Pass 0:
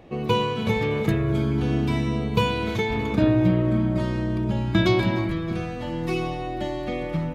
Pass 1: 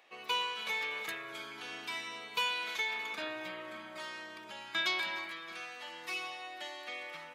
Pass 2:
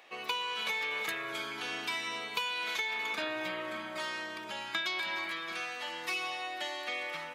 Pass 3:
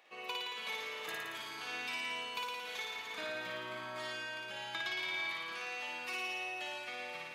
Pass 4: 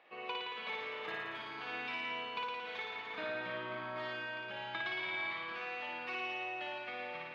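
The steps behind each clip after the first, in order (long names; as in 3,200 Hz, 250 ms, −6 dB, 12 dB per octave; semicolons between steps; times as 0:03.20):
high-pass filter 1,400 Hz 12 dB per octave; level −2.5 dB
downward compressor 10 to 1, threshold −37 dBFS, peak gain reduction 9.5 dB; level +6.5 dB
flutter between parallel walls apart 9.7 metres, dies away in 1.5 s; level −8 dB
high-frequency loss of the air 330 metres; level +3.5 dB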